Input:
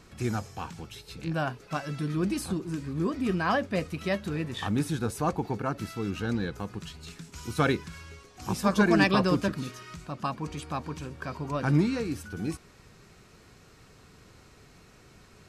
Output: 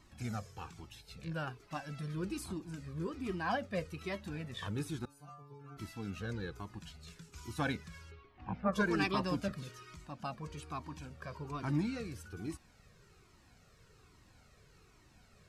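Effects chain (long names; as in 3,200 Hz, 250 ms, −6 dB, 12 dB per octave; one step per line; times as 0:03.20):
0:05.05–0:05.77: stiff-string resonator 140 Hz, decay 0.76 s, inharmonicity 0.002
0:08.10–0:08.72: low-pass filter 4,000 Hz → 1,900 Hz 24 dB per octave
flanger whose copies keep moving one way falling 1.2 Hz
level −4.5 dB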